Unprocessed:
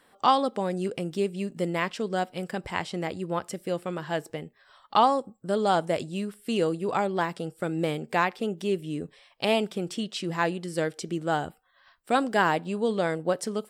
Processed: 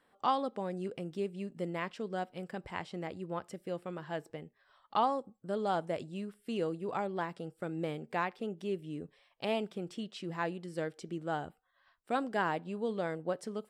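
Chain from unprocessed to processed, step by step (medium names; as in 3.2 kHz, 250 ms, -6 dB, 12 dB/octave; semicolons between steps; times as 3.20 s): treble shelf 4 kHz -8.5 dB; trim -8.5 dB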